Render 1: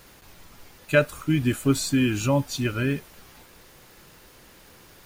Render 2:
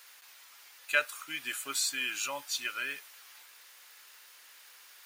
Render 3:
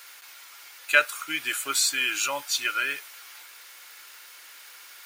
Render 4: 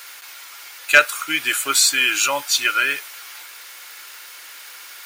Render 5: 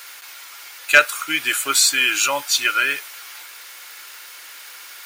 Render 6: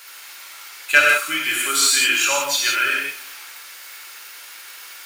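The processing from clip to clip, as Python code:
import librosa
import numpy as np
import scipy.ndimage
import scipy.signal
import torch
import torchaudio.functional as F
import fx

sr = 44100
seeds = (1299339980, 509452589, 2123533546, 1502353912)

y1 = scipy.signal.sosfilt(scipy.signal.butter(2, 1400.0, 'highpass', fs=sr, output='sos'), x)
y1 = y1 * 10.0 ** (-1.0 / 20.0)
y2 = fx.peak_eq(y1, sr, hz=220.0, db=-14.0, octaves=0.56)
y2 = fx.small_body(y2, sr, hz=(210.0, 310.0, 1400.0, 2200.0), ring_ms=45, db=7)
y2 = y2 * 10.0 ** (7.5 / 20.0)
y3 = np.clip(y2, -10.0 ** (-10.0 / 20.0), 10.0 ** (-10.0 / 20.0))
y3 = y3 * 10.0 ** (8.0 / 20.0)
y4 = y3
y5 = y4 + 10.0 ** (-23.5 / 20.0) * np.pad(y4, (int(255 * sr / 1000.0), 0))[:len(y4)]
y5 = fx.rev_gated(y5, sr, seeds[0], gate_ms=200, shape='flat', drr_db=-3.0)
y5 = y5 * 10.0 ** (-4.5 / 20.0)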